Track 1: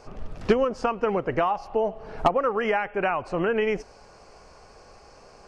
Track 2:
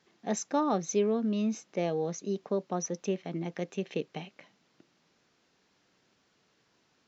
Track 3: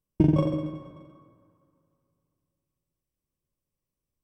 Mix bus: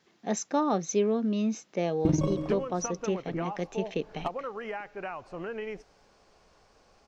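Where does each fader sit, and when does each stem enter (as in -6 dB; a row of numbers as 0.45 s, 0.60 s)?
-12.5 dB, +1.5 dB, -5.0 dB; 2.00 s, 0.00 s, 1.85 s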